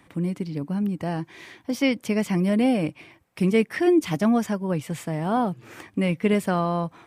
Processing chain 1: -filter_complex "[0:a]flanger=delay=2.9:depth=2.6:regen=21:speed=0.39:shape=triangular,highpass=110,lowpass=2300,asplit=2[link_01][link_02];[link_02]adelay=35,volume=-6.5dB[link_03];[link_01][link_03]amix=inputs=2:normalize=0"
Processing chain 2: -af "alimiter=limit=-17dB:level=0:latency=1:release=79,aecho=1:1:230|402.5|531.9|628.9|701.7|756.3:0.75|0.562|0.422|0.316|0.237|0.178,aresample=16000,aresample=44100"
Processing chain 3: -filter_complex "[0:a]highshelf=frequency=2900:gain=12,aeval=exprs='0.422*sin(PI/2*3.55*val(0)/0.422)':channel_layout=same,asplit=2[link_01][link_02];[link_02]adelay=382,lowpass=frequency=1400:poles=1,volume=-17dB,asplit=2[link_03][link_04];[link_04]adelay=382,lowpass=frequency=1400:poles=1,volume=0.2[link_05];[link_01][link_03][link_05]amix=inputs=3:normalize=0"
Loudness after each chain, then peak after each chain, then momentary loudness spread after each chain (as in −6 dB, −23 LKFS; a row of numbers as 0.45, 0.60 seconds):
−26.5, −24.0, −13.0 LKFS; −11.0, −9.5, −6.0 dBFS; 12, 5, 7 LU